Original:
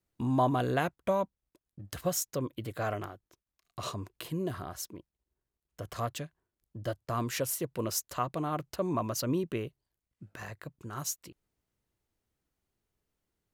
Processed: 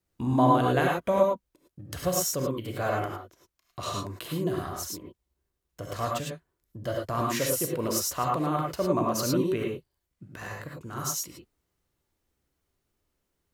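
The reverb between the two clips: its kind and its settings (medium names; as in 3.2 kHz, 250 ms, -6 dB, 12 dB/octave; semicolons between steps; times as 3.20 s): gated-style reverb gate 130 ms rising, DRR -1 dB; trim +2 dB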